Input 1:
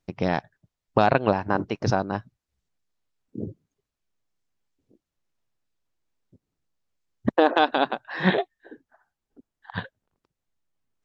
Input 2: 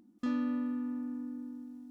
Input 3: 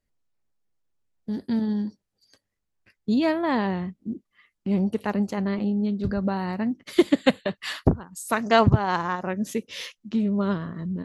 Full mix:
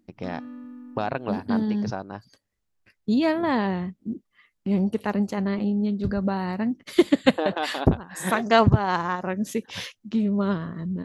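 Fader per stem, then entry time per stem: -8.5 dB, -6.5 dB, +0.5 dB; 0.00 s, 0.00 s, 0.00 s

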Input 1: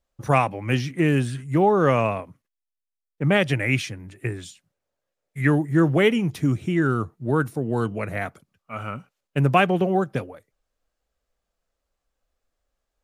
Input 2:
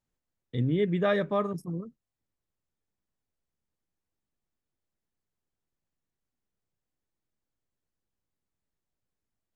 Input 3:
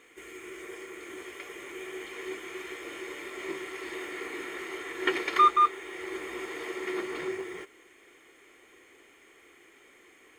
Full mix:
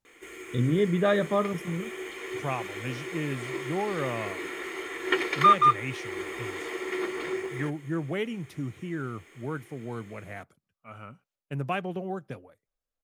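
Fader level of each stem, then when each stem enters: -12.5 dB, +2.0 dB, +2.0 dB; 2.15 s, 0.00 s, 0.05 s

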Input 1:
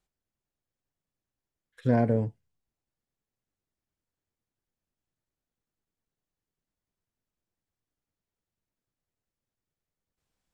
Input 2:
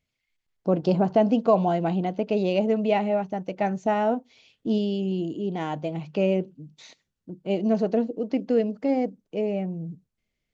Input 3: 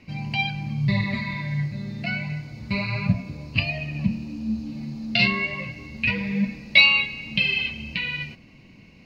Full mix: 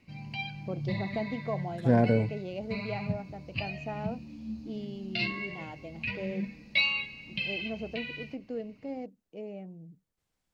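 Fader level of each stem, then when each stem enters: +0.5 dB, -14.5 dB, -11.5 dB; 0.00 s, 0.00 s, 0.00 s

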